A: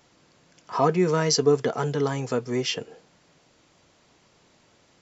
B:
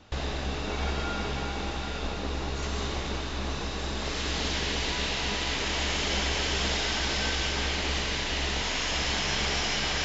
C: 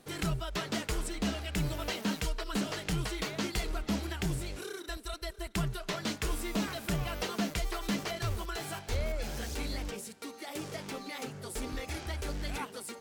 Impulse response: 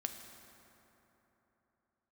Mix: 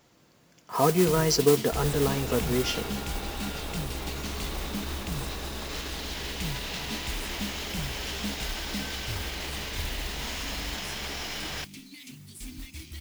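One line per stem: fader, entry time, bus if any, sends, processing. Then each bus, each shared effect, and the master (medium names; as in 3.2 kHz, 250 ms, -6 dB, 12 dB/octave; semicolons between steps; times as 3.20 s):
-5.5 dB, 0.00 s, send -8 dB, bass shelf 430 Hz +3.5 dB
-0.5 dB, 1.60 s, no send, peak limiter -26 dBFS, peak gain reduction 10.5 dB
-2.5 dB, 0.85 s, no send, inverse Chebyshev band-stop 480–1400 Hz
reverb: on, RT60 3.5 s, pre-delay 4 ms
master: modulation noise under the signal 12 dB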